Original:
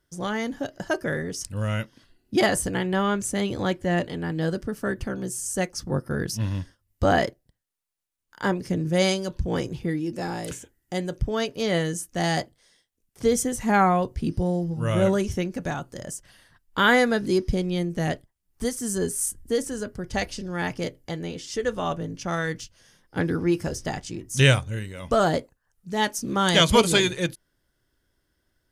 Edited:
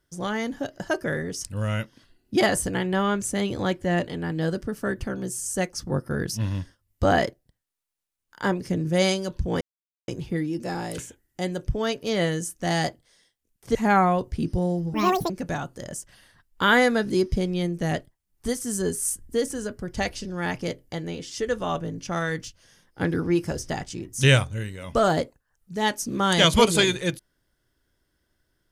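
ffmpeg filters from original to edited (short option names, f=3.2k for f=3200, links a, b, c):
-filter_complex "[0:a]asplit=5[a][b][c][d][e];[a]atrim=end=9.61,asetpts=PTS-STARTPTS,afade=t=out:st=9.606:d=0.004:c=hsin,apad=pad_dur=0.47[f];[b]atrim=start=9.61:end=13.282,asetpts=PTS-STARTPTS,afade=t=in:d=0.004:c=hsin[g];[c]atrim=start=13.588:end=14.784[h];[d]atrim=start=14.78:end=15.46,asetpts=PTS-STARTPTS,asetrate=83790,aresample=44100,atrim=end_sample=15783,asetpts=PTS-STARTPTS[i];[e]atrim=start=15.456[j];[f][g]concat=n=2:v=0:a=1[k];[k][h]acrossfade=d=0.004:c1=hsin:c2=hsin[l];[l][i]acrossfade=d=0.004:c1=hsin:c2=hsin[m];[m][j]acrossfade=d=0.004:c1=hsin:c2=hsin"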